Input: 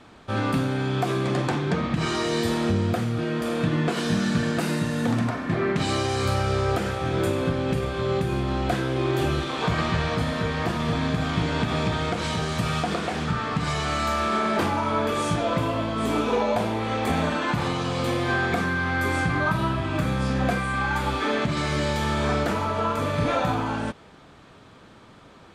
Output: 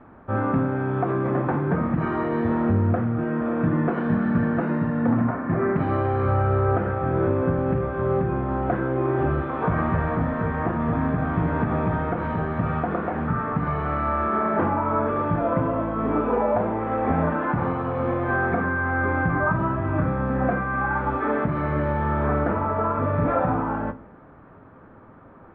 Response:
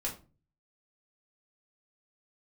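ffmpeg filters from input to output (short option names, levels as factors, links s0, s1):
-filter_complex "[0:a]lowpass=f=1600:w=0.5412,lowpass=f=1600:w=1.3066,asplit=2[s0][s1];[1:a]atrim=start_sample=2205[s2];[s1][s2]afir=irnorm=-1:irlink=0,volume=0.299[s3];[s0][s3]amix=inputs=2:normalize=0"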